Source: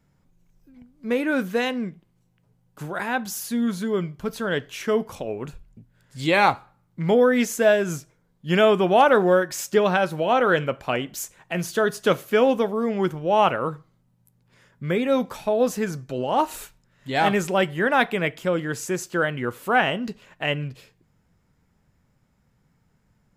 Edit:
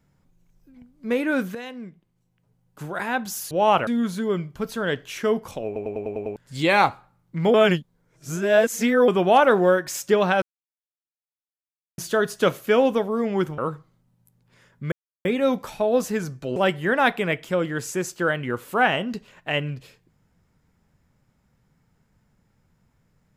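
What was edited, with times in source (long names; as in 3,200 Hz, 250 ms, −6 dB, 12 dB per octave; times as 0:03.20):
0:01.55–0:03.00: fade in, from −13.5 dB
0:05.30: stutter in place 0.10 s, 7 plays
0:07.18–0:08.72: reverse
0:10.06–0:11.62: silence
0:13.22–0:13.58: move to 0:03.51
0:14.92: splice in silence 0.33 s
0:16.23–0:17.50: remove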